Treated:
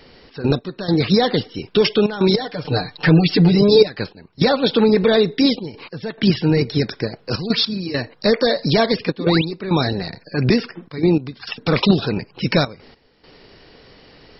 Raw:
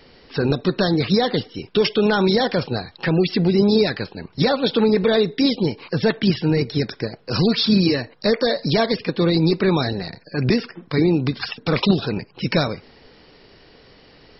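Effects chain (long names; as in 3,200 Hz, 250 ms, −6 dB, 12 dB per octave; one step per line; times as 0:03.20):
0:02.33–0:03.88: comb filter 6.7 ms, depth 98%
gate pattern "xx.x..xxxxxx" 102 BPM −12 dB
0:09.19–0:09.45: sound drawn into the spectrogram rise 210–4,400 Hz −28 dBFS
level +2.5 dB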